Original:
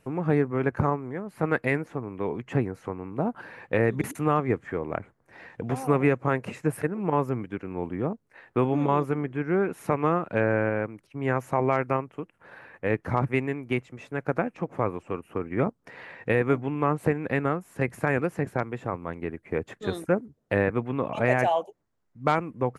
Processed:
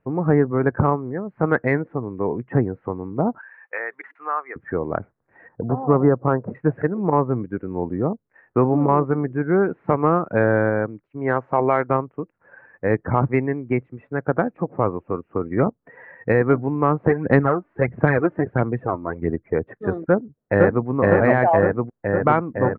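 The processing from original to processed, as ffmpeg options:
ffmpeg -i in.wav -filter_complex "[0:a]asettb=1/sr,asplit=3[link_01][link_02][link_03];[link_01]atrim=end=3.384[link_04];[link_02]atrim=start=3.38:end=4.56,asetpts=PTS-STARTPTS,afade=type=in:duration=0.004:curve=qsin,afade=type=out:start_time=1.176:duration=0.004:curve=qsin,highpass=1200[link_05];[link_03]atrim=start=4.556[link_06];[link_04][link_05]acrossfade=duration=0.004:curve1=hsin:curve2=qsin[link_07];[link_07][link_06]acrossfade=duration=0.004:curve1=qsin:curve2=hsin,asettb=1/sr,asplit=3[link_08][link_09][link_10];[link_08]atrim=end=5.484[link_11];[link_09]atrim=start=5.48:end=6.55,asetpts=PTS-STARTPTS,afade=type=in:duration=0.004:curve=qsin,afade=type=out:start_time=1.066:duration=0.004:curve=qsin,lowpass=frequency=1400:width=0.5412,lowpass=frequency=1400:width=1.3066[link_12];[link_10]atrim=start=6.546[link_13];[link_11][link_12]acrossfade=duration=0.004:curve1=hsin:curve2=qsin[link_14];[link_14][link_13]acrossfade=duration=0.004:curve1=qsin:curve2=hsin,asettb=1/sr,asplit=3[link_15][link_16][link_17];[link_15]atrim=end=11.044[link_18];[link_16]atrim=start=11.04:end=11.9,asetpts=PTS-STARTPTS,afade=type=in:duration=0.004:curve=qsin,afade=type=out:start_time=0.856:duration=0.004:curve=qsin,bass=frequency=250:gain=-6,treble=frequency=4000:gain=11[link_19];[link_17]atrim=start=11.896[link_20];[link_18][link_19]acrossfade=duration=0.004:curve1=hsin:curve2=qsin[link_21];[link_21][link_20]acrossfade=duration=0.004:curve1=qsin:curve2=hsin,asplit=3[link_22][link_23][link_24];[link_22]afade=type=out:start_time=17.08:duration=0.02[link_25];[link_23]aphaser=in_gain=1:out_gain=1:delay=3.4:decay=0.53:speed=1.5:type=sinusoidal,afade=type=in:start_time=17.08:duration=0.02,afade=type=out:start_time=19.53:duration=0.02[link_26];[link_24]afade=type=in:start_time=19.53:duration=0.02[link_27];[link_25][link_26][link_27]amix=inputs=3:normalize=0,asplit=2[link_28][link_29];[link_29]afade=type=in:start_time=20.07:duration=0.01,afade=type=out:start_time=20.87:duration=0.01,aecho=0:1:510|1020|1530|2040|2550|3060|3570|4080|4590|5100|5610|6120:1|0.75|0.5625|0.421875|0.316406|0.237305|0.177979|0.133484|0.100113|0.0750847|0.0563135|0.0422351[link_30];[link_28][link_30]amix=inputs=2:normalize=0,lowpass=frequency=2000:width=0.5412,lowpass=frequency=2000:width=1.3066,afftdn=noise_reduction=13:noise_floor=-39,acontrast=21,volume=1.5dB" out.wav

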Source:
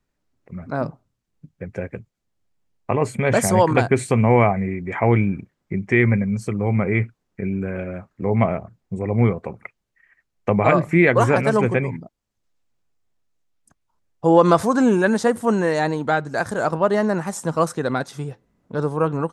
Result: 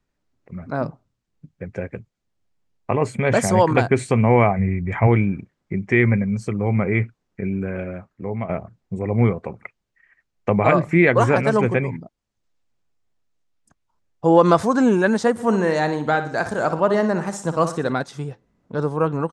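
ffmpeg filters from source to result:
ffmpeg -i in.wav -filter_complex "[0:a]asplit=3[link_01][link_02][link_03];[link_01]afade=type=out:start_time=4.58:duration=0.02[link_04];[link_02]asubboost=boost=10:cutoff=150,afade=type=in:start_time=4.58:duration=0.02,afade=type=out:start_time=5.06:duration=0.02[link_05];[link_03]afade=type=in:start_time=5.06:duration=0.02[link_06];[link_04][link_05][link_06]amix=inputs=3:normalize=0,asplit=3[link_07][link_08][link_09];[link_07]afade=type=out:start_time=15.38:duration=0.02[link_10];[link_08]aecho=1:1:60|120|180|240:0.282|0.118|0.0497|0.0209,afade=type=in:start_time=15.38:duration=0.02,afade=type=out:start_time=17.91:duration=0.02[link_11];[link_09]afade=type=in:start_time=17.91:duration=0.02[link_12];[link_10][link_11][link_12]amix=inputs=3:normalize=0,asplit=2[link_13][link_14];[link_13]atrim=end=8.49,asetpts=PTS-STARTPTS,afade=type=out:start_time=7.86:duration=0.63:silence=0.237137[link_15];[link_14]atrim=start=8.49,asetpts=PTS-STARTPTS,afade=type=in:duration=0.004:curve=hsin:silence=0.237137[link_16];[link_15][link_16]concat=n=2:v=0:a=1,lowpass=8000" out.wav

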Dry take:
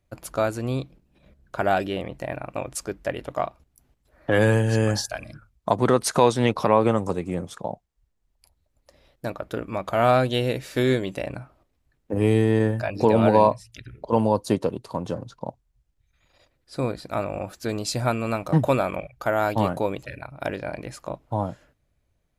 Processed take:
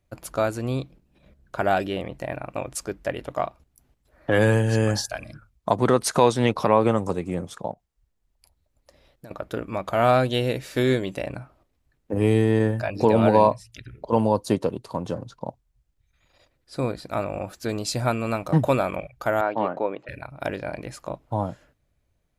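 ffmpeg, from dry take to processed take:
ffmpeg -i in.wav -filter_complex "[0:a]asettb=1/sr,asplit=3[link_01][link_02][link_03];[link_01]atrim=end=7.714[link_04];[link_02]atrim=start=7.71:end=9.31,asetpts=PTS-STARTPTS,afade=type=in:duration=0.004:curve=qsin,afade=type=out:start_time=1.596:duration=0.004:curve=qsin,acompressor=threshold=-40dB:ratio=6:attack=3.2:release=140:knee=1:detection=peak[link_05];[link_03]atrim=start=9.306[link_06];[link_04][link_05]acrossfade=duration=0.004:curve1=hsin:curve2=qsin[link_07];[link_07][link_06]acrossfade=duration=0.004:curve1=qsin:curve2=hsin,asettb=1/sr,asplit=3[link_08][link_09][link_10];[link_08]atrim=end=19.414[link_11];[link_09]atrim=start=19.41:end=20.09,asetpts=PTS-STARTPTS,afade=type=in:duration=0.004:curve=qsin,afade=type=out:start_time=0.676:duration=0.004:curve=qsin,highpass=290,lowpass=2000[link_12];[link_10]atrim=start=20.086[link_13];[link_11][link_12]acrossfade=duration=0.004:curve1=hsin:curve2=qsin[link_14];[link_14][link_13]acrossfade=duration=0.004:curve1=qsin:curve2=hsin" out.wav

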